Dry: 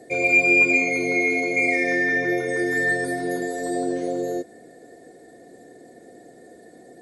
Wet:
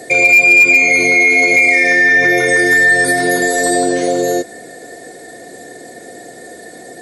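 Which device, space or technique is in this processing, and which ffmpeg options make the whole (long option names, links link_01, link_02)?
mastering chain: -af "highpass=47,equalizer=frequency=280:width_type=o:width=1.7:gain=-3.5,acompressor=threshold=-24dB:ratio=2,tiltshelf=frequency=970:gain=-4.5,asoftclip=type=hard:threshold=-15.5dB,alimiter=level_in=19dB:limit=-1dB:release=50:level=0:latency=1,volume=-2.5dB"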